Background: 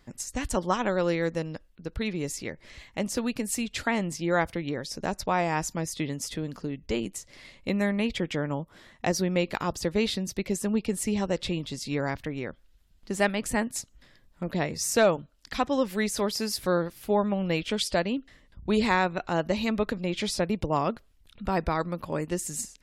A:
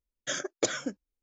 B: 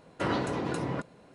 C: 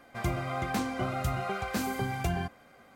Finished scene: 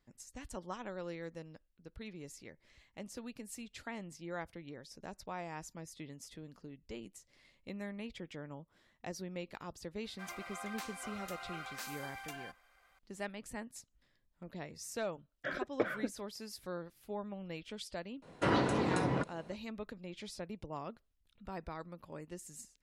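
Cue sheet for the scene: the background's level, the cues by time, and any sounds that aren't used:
background −17 dB
0:10.04: mix in C −7.5 dB + high-pass filter 1,000 Hz
0:15.17: mix in A −3 dB + low-pass filter 2,200 Hz 24 dB per octave
0:18.22: mix in B −0.5 dB

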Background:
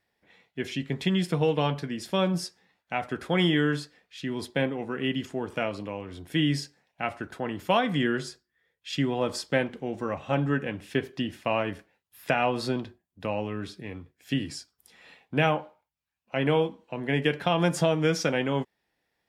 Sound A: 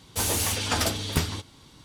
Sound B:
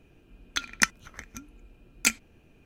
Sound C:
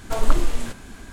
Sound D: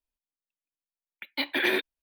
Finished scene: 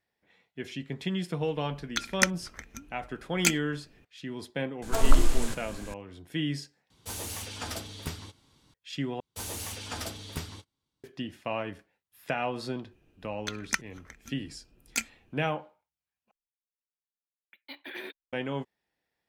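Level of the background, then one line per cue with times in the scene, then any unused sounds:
background −6 dB
0:01.40: mix in B −1.5 dB
0:04.82: mix in C −3 dB + bass and treble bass +1 dB, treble +5 dB
0:06.90: overwrite with A −11.5 dB
0:09.20: overwrite with A −11.5 dB + noise gate −44 dBFS, range −21 dB
0:12.91: mix in B −7 dB
0:16.31: overwrite with D −15.5 dB

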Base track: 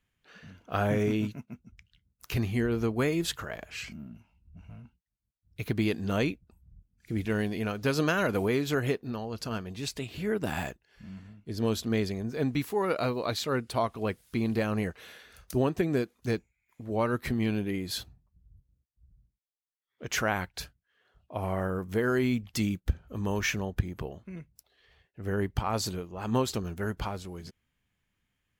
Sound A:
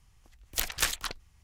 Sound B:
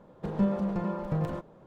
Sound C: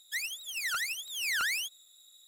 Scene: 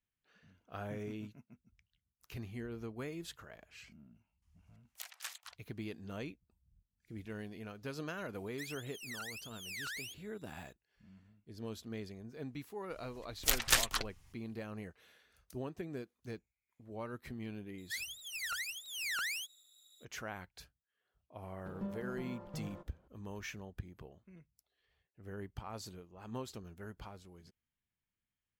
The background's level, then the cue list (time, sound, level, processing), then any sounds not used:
base track −15.5 dB
0:04.42: mix in A −17 dB + high-pass filter 670 Hz 24 dB per octave
0:08.46: mix in C −12.5 dB
0:12.90: mix in A −0.5 dB + comb filter 7.5 ms, depth 32%
0:17.78: mix in C −6.5 dB
0:21.42: mix in B −15.5 dB

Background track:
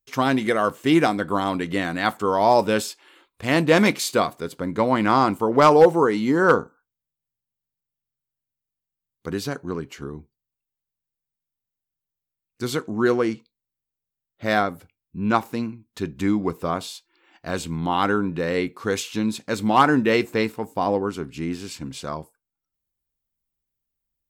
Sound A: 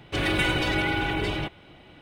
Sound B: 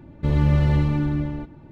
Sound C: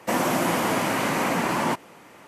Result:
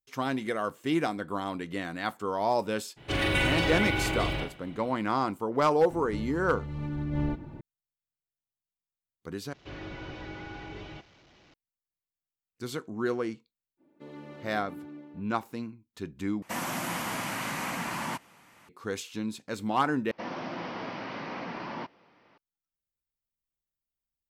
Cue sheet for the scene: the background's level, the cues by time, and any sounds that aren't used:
background track −10 dB
0:02.96: mix in A −3 dB, fades 0.02 s + flutter between parallel walls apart 7.2 metres, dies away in 0.39 s
0:05.90: mix in B −5.5 dB + compressor whose output falls as the input rises −28 dBFS
0:09.53: overwrite with A −14.5 dB + linear delta modulator 32 kbit/s, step −39 dBFS
0:13.77: mix in B −11.5 dB, fades 0.05 s + four-pole ladder high-pass 240 Hz, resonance 30%
0:16.42: overwrite with C −6 dB + parametric band 430 Hz −10.5 dB 1.6 octaves
0:20.11: overwrite with C −13.5 dB + Butterworth low-pass 5,500 Hz 72 dB per octave

